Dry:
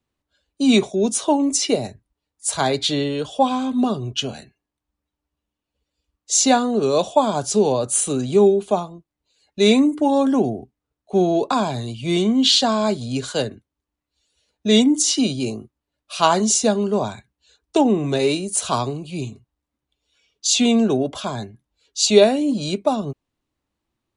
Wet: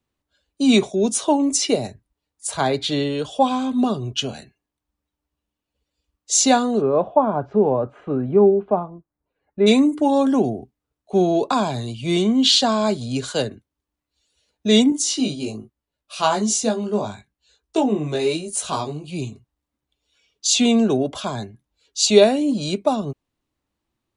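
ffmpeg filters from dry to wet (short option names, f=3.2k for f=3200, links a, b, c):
-filter_complex "[0:a]asettb=1/sr,asplit=3[a][b][c];[a]atrim=end=2.474[d];[b]atrim=start=2.47:end=2.92,asetpts=PTS-STARTPTS,afade=t=in:d=0.004:c=qsin,afade=t=out:st=0.446:d=0.004:c=qsin,equalizer=f=7.3k:t=o:w=1.9:g=-7[e];[c]atrim=start=2.916[f];[d][e]acrossfade=d=0.004:c1=hsin:c2=qsin[g];[g][f]acrossfade=d=0.004:c1=qsin:c2=hsin,asplit=3[h][i][j];[h]afade=t=out:st=6.8:d=0.02[k];[i]lowpass=f=1.7k:w=0.5412,lowpass=f=1.7k:w=1.3066,afade=t=in:st=6.8:d=0.02,afade=t=out:st=9.66:d=0.02[l];[j]afade=t=in:st=9.66:d=0.02[m];[k][l][m]amix=inputs=3:normalize=0,asettb=1/sr,asplit=3[n][o][p];[n]atrim=end=14.904[q];[o]atrim=start=14.9:end=19.08,asetpts=PTS-STARTPTS,afade=t=in:d=0.004:c=qsin,afade=t=out:st=4.176:d=0.004:c=qsin,flanger=delay=18:depth=2:speed=1.1[r];[p]atrim=start=19.076[s];[q][r]acrossfade=d=0.004:c1=hsin:c2=qsin[t];[t][s]acrossfade=d=0.004:c1=qsin:c2=hsin"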